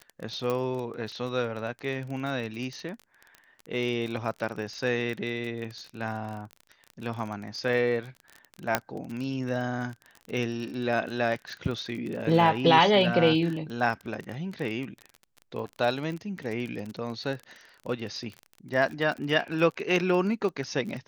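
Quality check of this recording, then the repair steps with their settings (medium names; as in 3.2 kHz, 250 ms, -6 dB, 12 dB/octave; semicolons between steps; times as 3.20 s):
crackle 31 per s -33 dBFS
0.50 s: pop
8.75 s: pop -7 dBFS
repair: de-click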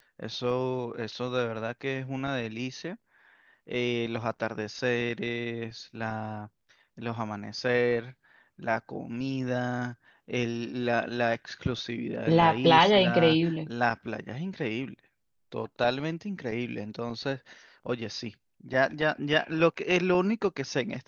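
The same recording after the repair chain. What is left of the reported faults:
0.50 s: pop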